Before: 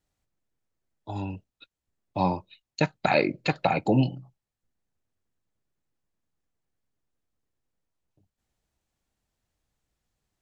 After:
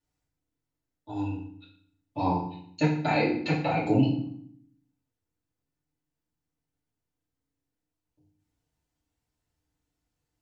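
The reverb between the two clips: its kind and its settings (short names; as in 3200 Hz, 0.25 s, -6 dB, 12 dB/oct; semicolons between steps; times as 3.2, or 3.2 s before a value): FDN reverb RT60 0.61 s, low-frequency decay 1.55×, high-frequency decay 0.85×, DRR -7.5 dB; gain -10.5 dB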